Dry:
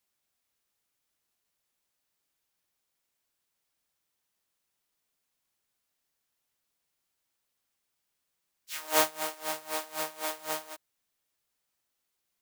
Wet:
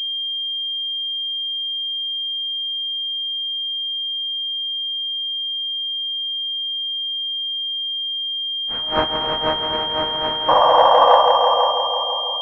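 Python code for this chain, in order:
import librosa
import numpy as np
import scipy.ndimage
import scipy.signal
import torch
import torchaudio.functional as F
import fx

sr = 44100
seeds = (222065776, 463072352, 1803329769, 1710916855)

y = fx.spec_paint(x, sr, seeds[0], shape='noise', start_s=10.48, length_s=0.75, low_hz=480.0, high_hz=1200.0, level_db=-20.0)
y = fx.echo_heads(y, sr, ms=165, heads='all three', feedback_pct=53, wet_db=-7.5)
y = fx.pwm(y, sr, carrier_hz=3200.0)
y = y * librosa.db_to_amplitude(7.0)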